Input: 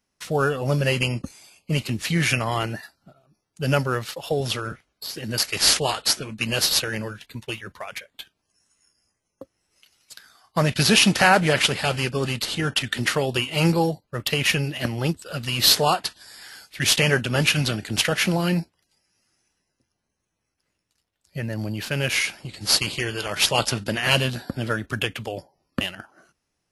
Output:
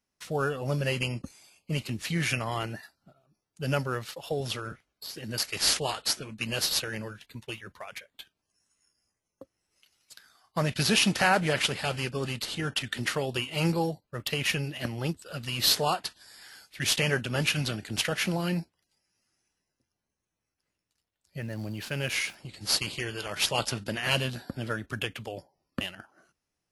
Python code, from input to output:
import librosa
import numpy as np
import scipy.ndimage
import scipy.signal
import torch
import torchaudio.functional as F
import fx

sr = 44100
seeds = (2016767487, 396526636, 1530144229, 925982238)

y = fx.sample_gate(x, sr, floor_db=-44.0, at=(21.41, 22.35))
y = y * librosa.db_to_amplitude(-7.0)